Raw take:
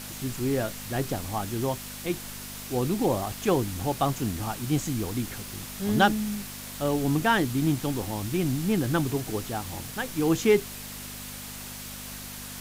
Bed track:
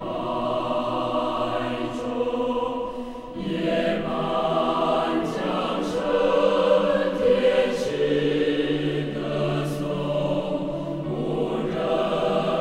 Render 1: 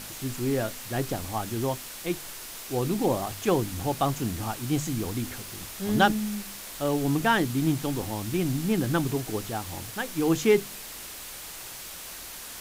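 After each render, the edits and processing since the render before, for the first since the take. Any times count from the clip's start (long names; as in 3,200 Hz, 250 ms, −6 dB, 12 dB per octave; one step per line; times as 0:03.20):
hum removal 50 Hz, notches 5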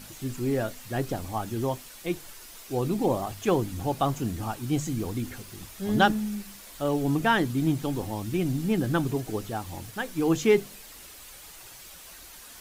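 broadband denoise 8 dB, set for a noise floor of −41 dBFS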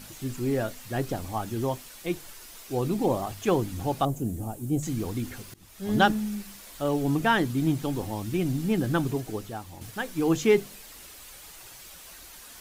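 0:04.05–0:04.83: flat-topped bell 2,300 Hz −14.5 dB 2.9 octaves
0:05.54–0:05.94: fade in, from −22.5 dB
0:09.07–0:09.81: fade out, to −7.5 dB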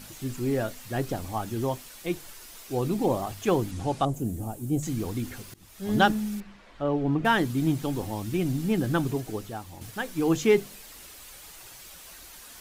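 0:03.71–0:04.14: low-pass filter 9,900 Hz 24 dB per octave
0:06.40–0:07.25: low-pass filter 2,300 Hz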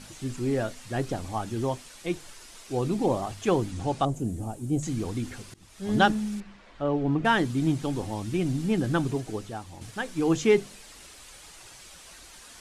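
low-pass filter 10,000 Hz 24 dB per octave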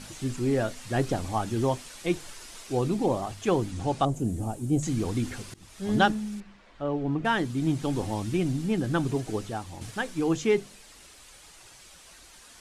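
speech leveller within 3 dB 0.5 s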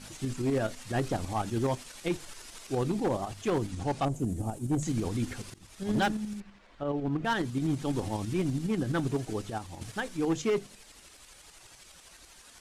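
shaped tremolo saw up 12 Hz, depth 50%
hard clipping −22.5 dBFS, distortion −14 dB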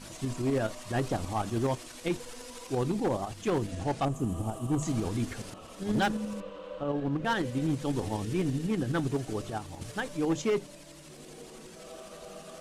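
mix in bed track −23.5 dB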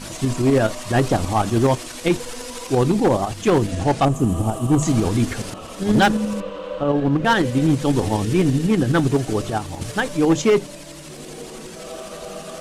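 level +12 dB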